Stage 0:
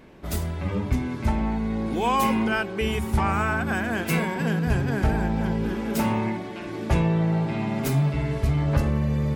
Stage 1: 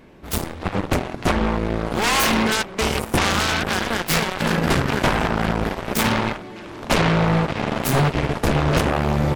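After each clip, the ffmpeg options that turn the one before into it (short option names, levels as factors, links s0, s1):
-af "aeval=exprs='0.316*(cos(1*acos(clip(val(0)/0.316,-1,1)))-cos(1*PI/2))+0.0141*(cos(3*acos(clip(val(0)/0.316,-1,1)))-cos(3*PI/2))+0.0501*(cos(7*acos(clip(val(0)/0.316,-1,1)))-cos(7*PI/2))':c=same,aeval=exprs='0.335*sin(PI/2*3.98*val(0)/0.335)':c=same,volume=0.794"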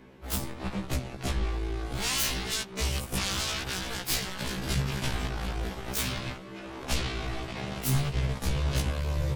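-filter_complex "[0:a]acrossover=split=170|3000[s0][s1][s2];[s1]acompressor=threshold=0.0282:ratio=6[s3];[s0][s3][s2]amix=inputs=3:normalize=0,afftfilt=real='re*1.73*eq(mod(b,3),0)':imag='im*1.73*eq(mod(b,3),0)':win_size=2048:overlap=0.75,volume=0.75"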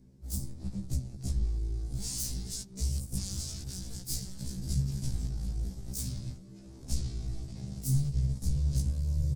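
-af "firequalizer=gain_entry='entry(130,0);entry(390,-15);entry(1100,-27);entry(1800,-26);entry(2900,-26);entry(4800,-7);entry(8500,-2);entry(12000,-8)':delay=0.05:min_phase=1"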